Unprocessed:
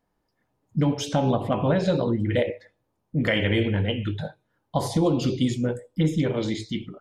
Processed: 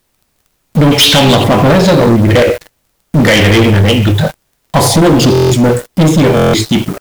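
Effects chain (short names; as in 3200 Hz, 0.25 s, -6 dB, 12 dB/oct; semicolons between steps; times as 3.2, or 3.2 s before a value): 0.91–1.44 band shelf 2800 Hz +14.5 dB; added noise pink -57 dBFS; high shelf 7000 Hz +7 dB; sample leveller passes 5; stuck buffer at 5.33/6.35, samples 1024, times 7; gain +3.5 dB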